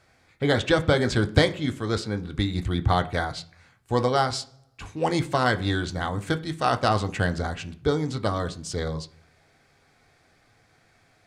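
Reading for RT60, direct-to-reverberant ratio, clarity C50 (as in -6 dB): 0.45 s, 6.5 dB, 18.0 dB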